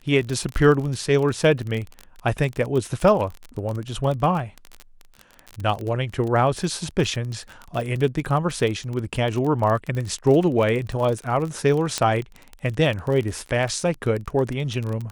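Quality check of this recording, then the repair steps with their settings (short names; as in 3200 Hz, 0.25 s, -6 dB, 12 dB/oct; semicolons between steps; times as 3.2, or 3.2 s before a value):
crackle 30/s -26 dBFS
11.98 pop -8 dBFS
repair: de-click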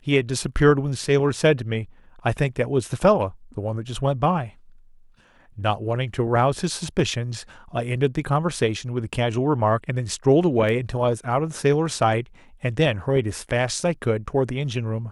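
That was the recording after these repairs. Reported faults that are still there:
11.98 pop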